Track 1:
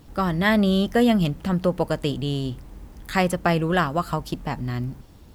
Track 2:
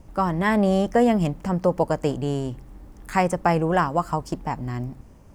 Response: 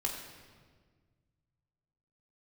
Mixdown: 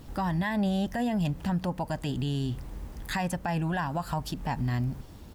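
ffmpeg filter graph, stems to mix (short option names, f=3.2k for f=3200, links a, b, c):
-filter_complex "[0:a]acompressor=threshold=-27dB:ratio=6,volume=1.5dB[a];[1:a]adelay=1.7,volume=-8dB[b];[a][b]amix=inputs=2:normalize=0,alimiter=limit=-21dB:level=0:latency=1:release=33"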